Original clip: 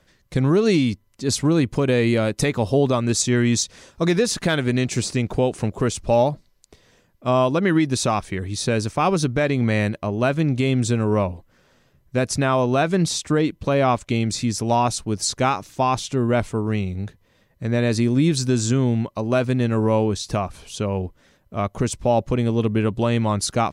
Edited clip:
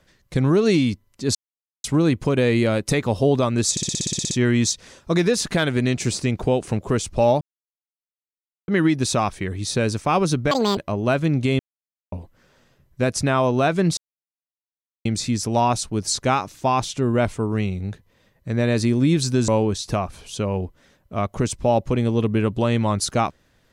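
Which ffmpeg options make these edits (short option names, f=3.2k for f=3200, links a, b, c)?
-filter_complex "[0:a]asplit=21[a][b][c][d][e][f][g][h][i][j][k][l][m][n][o][p][q][r][s][t][u];[a]atrim=end=1.35,asetpts=PTS-STARTPTS,afade=t=out:st=1.346:d=0.004:c=hsin,apad=pad_dur=0.49[v];[b]atrim=start=1.35:end=3.282,asetpts=PTS-STARTPTS,afade=t=in:d=0.004:c=hsin[w];[c]atrim=start=3.218:end=3.282[x];[d]atrim=start=3.218:end=3.282[y];[e]atrim=start=3.218:end=3.282[z];[f]atrim=start=3.218:end=3.282[aa];[g]atrim=start=3.218:end=3.282[ab];[h]atrim=start=3.218:end=3.282[ac];[i]atrim=start=3.218:end=3.282[ad];[j]atrim=start=3.218:end=3.282[ae];[k]atrim=start=3.218:end=3.282[af];[l]atrim=start=3.218:end=6.32,asetpts=PTS-STARTPTS,afade=t=out:st=3.098:d=0.004:c=hsin[ag];[m]atrim=start=6.32:end=7.59,asetpts=PTS-STARTPTS,volume=0[ah];[n]atrim=start=7.59:end=9.424,asetpts=PTS-STARTPTS,afade=t=in:d=0.004:c=hsin[ai];[o]atrim=start=9.42:end=9.92,asetpts=PTS-STARTPTS,asetrate=84231,aresample=44100[aj];[p]atrim=start=9.916:end=10.74,asetpts=PTS-STARTPTS,afade=t=out:st=0.82:d=0.004:c=hsin[ak];[q]atrim=start=10.74:end=11.27,asetpts=PTS-STARTPTS,volume=0[al];[r]atrim=start=11.27:end=13.12,asetpts=PTS-STARTPTS,afade=t=in:d=0.004:c=hsin,afade=t=out:st=1.846:d=0.004:c=hsin[am];[s]atrim=start=13.12:end=14.2,asetpts=PTS-STARTPTS,volume=0[an];[t]atrim=start=14.2:end=18.632,asetpts=PTS-STARTPTS,afade=t=in:d=0.004:c=hsin[ao];[u]atrim=start=19.888[ap];[v][w]concat=n=2:v=0:a=1[aq];[aq][x]acrossfade=d=0.004:c1=hsin:c2=hsin[ar];[ar][y]acrossfade=d=0.004:c1=hsin:c2=hsin[as];[as][z]acrossfade=d=0.004:c1=hsin:c2=hsin[at];[at][aa]acrossfade=d=0.004:c1=hsin:c2=hsin[au];[au][ab]acrossfade=d=0.004:c1=hsin:c2=hsin[av];[av][ac]acrossfade=d=0.004:c1=hsin:c2=hsin[aw];[aw][ad]acrossfade=d=0.004:c1=hsin:c2=hsin[ax];[ax][ae]acrossfade=d=0.004:c1=hsin:c2=hsin[ay];[ay][af]acrossfade=d=0.004:c1=hsin:c2=hsin[az];[ag][ah][ai]concat=n=3:v=0:a=1[ba];[az][ba]acrossfade=d=0.004:c1=hsin:c2=hsin[bb];[bb][aj]acrossfade=d=0.004:c1=hsin:c2=hsin[bc];[ak][al][am][an][ao]concat=n=5:v=0:a=1[bd];[bc][bd]acrossfade=d=0.004:c1=hsin:c2=hsin[be];[be][ap]acrossfade=d=0.004:c1=hsin:c2=hsin"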